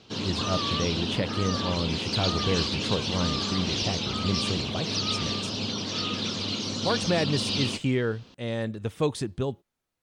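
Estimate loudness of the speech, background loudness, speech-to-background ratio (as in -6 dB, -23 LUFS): -30.5 LUFS, -28.5 LUFS, -2.0 dB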